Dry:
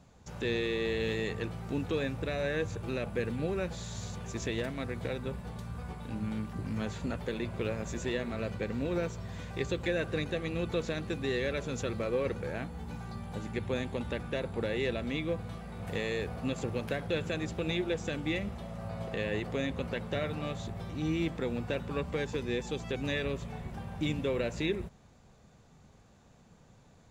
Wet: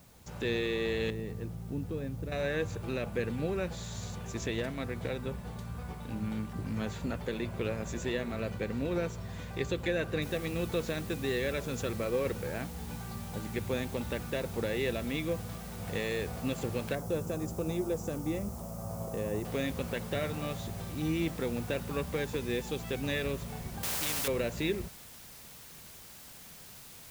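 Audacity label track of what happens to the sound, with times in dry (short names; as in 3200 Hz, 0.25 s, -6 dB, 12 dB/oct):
1.100000	2.320000	EQ curve 160 Hz 0 dB, 350 Hz -5 dB, 7800 Hz -22 dB
10.220000	10.220000	noise floor step -63 dB -51 dB
16.950000	19.450000	band shelf 2600 Hz -13 dB
23.830000	24.280000	spectral compressor 4:1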